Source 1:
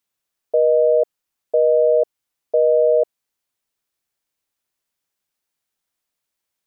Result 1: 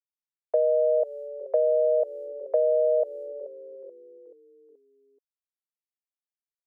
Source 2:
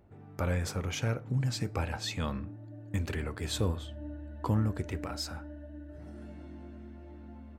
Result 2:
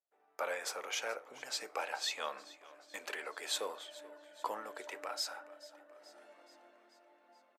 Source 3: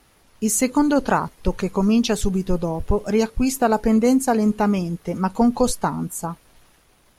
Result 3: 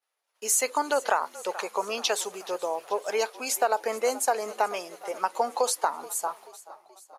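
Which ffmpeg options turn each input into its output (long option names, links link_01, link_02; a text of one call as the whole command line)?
ffmpeg -i in.wav -filter_complex "[0:a]agate=range=-33dB:threshold=-42dB:ratio=3:detection=peak,asplit=6[link_01][link_02][link_03][link_04][link_05][link_06];[link_02]adelay=430,afreqshift=-42,volume=-19dB[link_07];[link_03]adelay=860,afreqshift=-84,volume=-23.6dB[link_08];[link_04]adelay=1290,afreqshift=-126,volume=-28.2dB[link_09];[link_05]adelay=1720,afreqshift=-168,volume=-32.7dB[link_10];[link_06]adelay=2150,afreqshift=-210,volume=-37.3dB[link_11];[link_01][link_07][link_08][link_09][link_10][link_11]amix=inputs=6:normalize=0,aresample=32000,aresample=44100,highpass=frequency=520:width=0.5412,highpass=frequency=520:width=1.3066,acompressor=threshold=-19dB:ratio=6" out.wav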